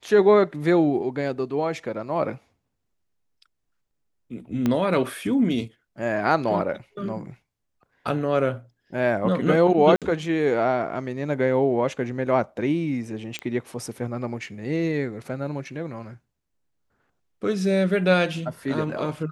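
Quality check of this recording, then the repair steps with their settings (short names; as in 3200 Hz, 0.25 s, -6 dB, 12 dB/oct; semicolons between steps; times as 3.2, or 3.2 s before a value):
4.66 pop -11 dBFS
9.96–10.02 gap 57 ms
13.39 pop -16 dBFS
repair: de-click; interpolate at 9.96, 57 ms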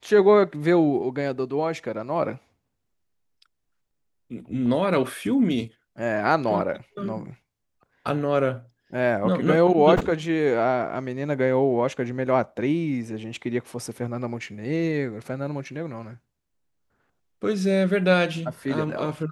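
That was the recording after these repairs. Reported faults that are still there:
4.66 pop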